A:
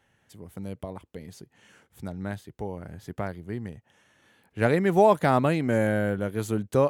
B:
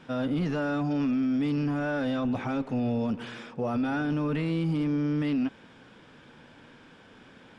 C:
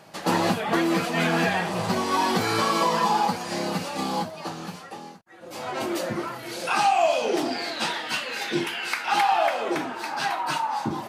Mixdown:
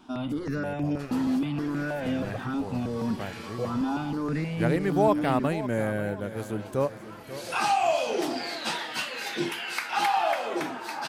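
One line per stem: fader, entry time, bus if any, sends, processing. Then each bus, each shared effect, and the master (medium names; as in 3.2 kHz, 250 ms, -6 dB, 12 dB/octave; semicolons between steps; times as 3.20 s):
-3.5 dB, 0.00 s, no send, echo send -13.5 dB, transient shaper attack -3 dB, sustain -7 dB
+1.5 dB, 0.00 s, no send, no echo send, stepped phaser 6.3 Hz 510–4100 Hz
-3.5 dB, 0.85 s, no send, no echo send, auto duck -16 dB, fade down 1.55 s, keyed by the first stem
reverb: none
echo: feedback delay 539 ms, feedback 42%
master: treble shelf 11 kHz +4.5 dB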